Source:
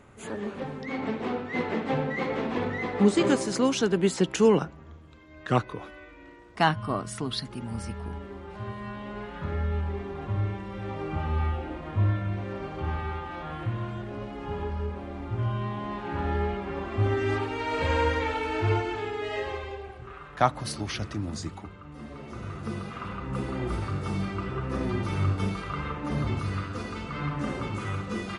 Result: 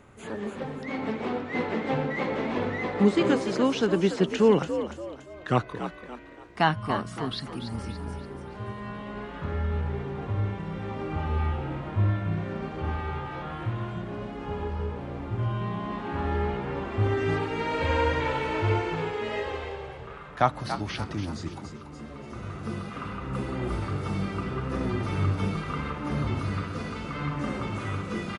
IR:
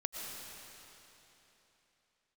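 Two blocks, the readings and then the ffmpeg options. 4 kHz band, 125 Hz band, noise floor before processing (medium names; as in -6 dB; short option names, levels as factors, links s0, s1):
-1.0 dB, +0.5 dB, -47 dBFS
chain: -filter_complex "[0:a]asplit=5[s0][s1][s2][s3][s4];[s1]adelay=286,afreqshift=60,volume=0.316[s5];[s2]adelay=572,afreqshift=120,volume=0.12[s6];[s3]adelay=858,afreqshift=180,volume=0.0457[s7];[s4]adelay=1144,afreqshift=240,volume=0.0174[s8];[s0][s5][s6][s7][s8]amix=inputs=5:normalize=0,acrossover=split=4700[s9][s10];[s10]acompressor=threshold=0.00251:ratio=4:attack=1:release=60[s11];[s9][s11]amix=inputs=2:normalize=0"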